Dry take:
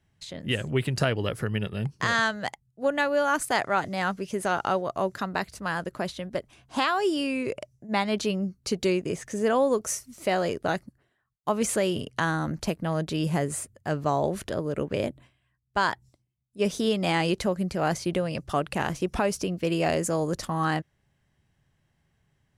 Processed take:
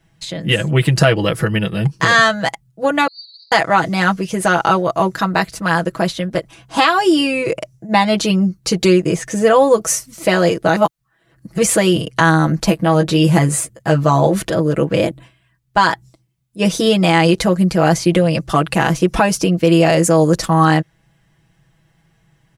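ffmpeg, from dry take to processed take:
-filter_complex "[0:a]asettb=1/sr,asplit=3[a][b][c];[a]atrim=end=3.074[d];[b]atrim=start=3.07:end=3.52,asetpts=PTS-STARTPTS,afade=t=in:d=0.004:c=qsin,afade=t=out:st=0.446:d=0.004:c=qsin,asuperpass=centerf=4300:order=12:qfactor=4.4[e];[c]atrim=start=3.516[f];[d][e]acrossfade=d=0.004:c1=hsin:c2=qsin[g];[g][f]acrossfade=d=0.004:c1=qsin:c2=hsin,asettb=1/sr,asplit=3[h][i][j];[h]atrim=end=12.664[k];[i]atrim=start=12.66:end=14.41,asetpts=PTS-STARTPTS,afade=t=in:d=0.004:c=qsin,afade=t=out:st=1.746:d=0.004:c=qsin,asplit=2[l][m];[m]adelay=15,volume=-6.5dB[n];[l][n]amix=inputs=2:normalize=0,atrim=end_sample=77175[o];[j]atrim=start=14.406[p];[k][o]acrossfade=d=0.004:c1=hsin:c2=qsin[q];[q][p]acrossfade=d=0.004:c1=qsin:c2=hsin,asplit=3[r][s][t];[r]atrim=end=10.762[u];[s]atrim=start=10.758:end=11.582,asetpts=PTS-STARTPTS,areverse[v];[t]atrim=start=11.578[w];[u][v]acrossfade=d=0.004:c1=hsin:c2=hsin[x];[x][w]acrossfade=d=0.004:c1=hsin:c2=hsin,aecho=1:1:6.1:0.84,alimiter=level_in=11.5dB:limit=-1dB:release=50:level=0:latency=1,volume=-1dB"

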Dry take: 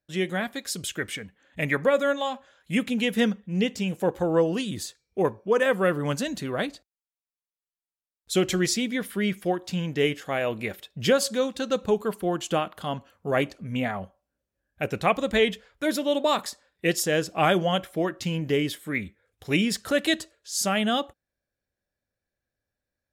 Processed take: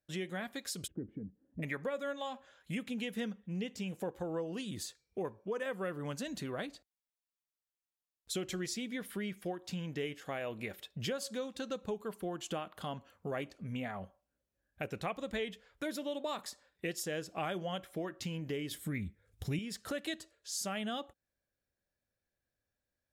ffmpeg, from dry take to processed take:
-filter_complex "[0:a]asplit=3[a][b][c];[a]afade=t=out:st=0.86:d=0.02[d];[b]lowpass=f=280:t=q:w=1.9,afade=t=in:st=0.86:d=0.02,afade=t=out:st=1.62:d=0.02[e];[c]afade=t=in:st=1.62:d=0.02[f];[d][e][f]amix=inputs=3:normalize=0,asettb=1/sr,asplit=3[g][h][i];[g]atrim=end=18.714[j];[h]atrim=start=18.71:end=19.59,asetpts=PTS-STARTPTS,afade=t=in:d=0.004:c=qsin,afade=t=out:st=0.876:d=0.004:c=qsin,bass=f=250:g=15,treble=f=4k:g=6[k];[i]atrim=start=19.586[l];[j][k]acrossfade=d=0.004:c1=hsin:c2=qsin[m];[m][l]acrossfade=d=0.004:c1=qsin:c2=hsin,acompressor=threshold=-35dB:ratio=3,volume=-3.5dB"

